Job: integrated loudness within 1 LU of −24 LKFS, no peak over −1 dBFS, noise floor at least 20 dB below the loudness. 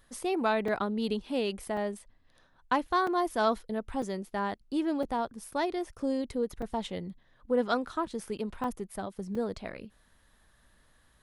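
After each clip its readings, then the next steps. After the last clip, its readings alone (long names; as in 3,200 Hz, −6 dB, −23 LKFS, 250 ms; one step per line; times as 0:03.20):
number of dropouts 8; longest dropout 3.5 ms; integrated loudness −32.0 LKFS; sample peak −14.5 dBFS; target loudness −24.0 LKFS
→ repair the gap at 0:00.68/0:01.77/0:03.07/0:04.02/0:05.03/0:06.62/0:08.64/0:09.35, 3.5 ms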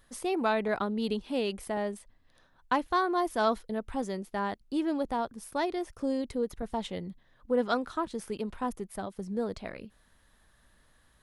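number of dropouts 0; integrated loudness −32.0 LKFS; sample peak −14.5 dBFS; target loudness −24.0 LKFS
→ level +8 dB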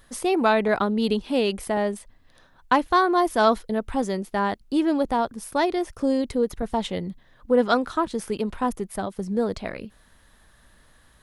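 integrated loudness −24.0 LKFS; sample peak −6.5 dBFS; background noise floor −57 dBFS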